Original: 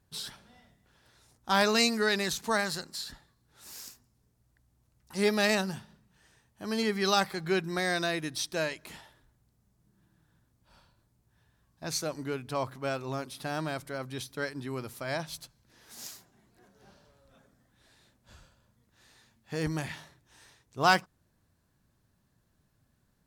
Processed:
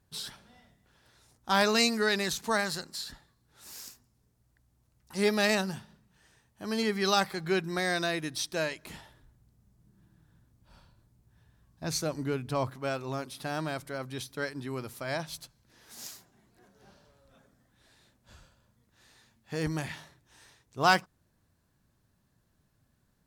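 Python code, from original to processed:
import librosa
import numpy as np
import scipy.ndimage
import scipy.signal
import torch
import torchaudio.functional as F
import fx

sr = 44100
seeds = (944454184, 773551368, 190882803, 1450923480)

y = fx.low_shelf(x, sr, hz=280.0, db=7.0, at=(8.85, 12.7))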